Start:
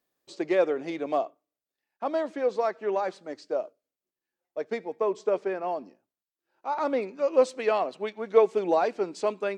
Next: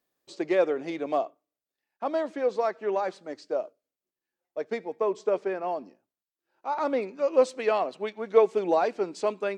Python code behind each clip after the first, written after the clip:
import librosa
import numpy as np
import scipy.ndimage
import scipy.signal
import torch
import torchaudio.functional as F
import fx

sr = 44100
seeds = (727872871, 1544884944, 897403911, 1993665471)

y = x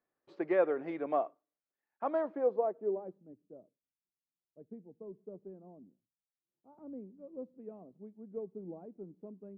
y = fx.filter_sweep_lowpass(x, sr, from_hz=1600.0, to_hz=170.0, start_s=2.1, end_s=3.35, q=1.2)
y = y * 10.0 ** (-5.5 / 20.0)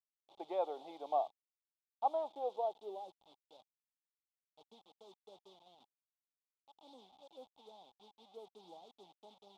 y = fx.delta_hold(x, sr, step_db=-51.0)
y = fx.double_bandpass(y, sr, hz=1700.0, octaves=2.1)
y = y * 10.0 ** (7.0 / 20.0)